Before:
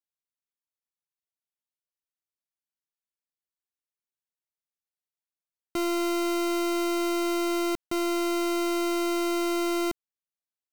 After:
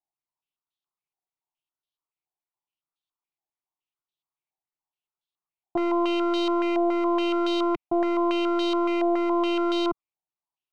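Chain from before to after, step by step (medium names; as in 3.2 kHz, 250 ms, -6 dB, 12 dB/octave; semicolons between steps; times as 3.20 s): static phaser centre 340 Hz, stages 8; step-sequenced low-pass 7.1 Hz 790–3500 Hz; trim +2.5 dB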